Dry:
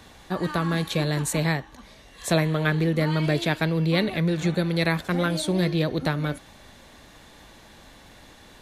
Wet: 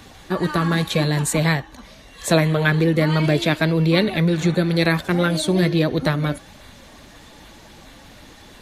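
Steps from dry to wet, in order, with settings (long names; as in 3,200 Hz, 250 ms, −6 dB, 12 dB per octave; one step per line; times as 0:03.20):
spectral magnitudes quantised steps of 15 dB
level +5.5 dB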